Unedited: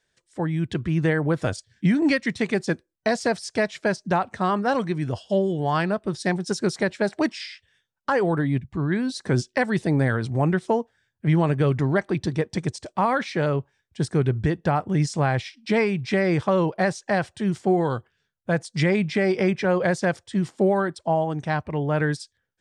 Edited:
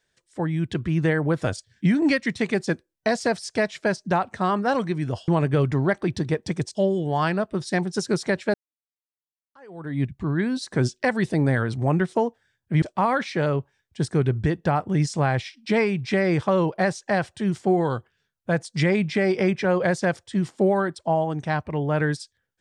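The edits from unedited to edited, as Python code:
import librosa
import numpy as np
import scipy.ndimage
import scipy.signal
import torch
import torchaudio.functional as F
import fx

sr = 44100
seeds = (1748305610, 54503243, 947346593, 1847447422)

y = fx.edit(x, sr, fx.fade_in_span(start_s=7.07, length_s=1.47, curve='exp'),
    fx.move(start_s=11.35, length_s=1.47, to_s=5.28), tone=tone)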